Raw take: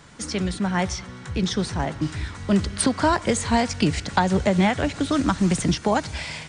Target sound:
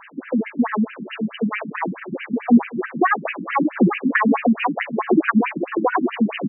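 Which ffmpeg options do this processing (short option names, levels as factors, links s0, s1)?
-filter_complex "[0:a]lowshelf=f=100:g=5,asplit=2[s0][s1];[s1]acompressor=threshold=0.0355:ratio=6,volume=0.891[s2];[s0][s2]amix=inputs=2:normalize=0,asetrate=52444,aresample=44100,atempo=0.840896,acrusher=bits=6:mix=0:aa=0.000001,asplit=2[s3][s4];[s4]aecho=0:1:783|1566|2349|3132:0.562|0.197|0.0689|0.0241[s5];[s3][s5]amix=inputs=2:normalize=0,afftfilt=real='re*between(b*sr/1024,210*pow(2200/210,0.5+0.5*sin(2*PI*4.6*pts/sr))/1.41,210*pow(2200/210,0.5+0.5*sin(2*PI*4.6*pts/sr))*1.41)':imag='im*between(b*sr/1024,210*pow(2200/210,0.5+0.5*sin(2*PI*4.6*pts/sr))/1.41,210*pow(2200/210,0.5+0.5*sin(2*PI*4.6*pts/sr))*1.41)':win_size=1024:overlap=0.75,volume=2"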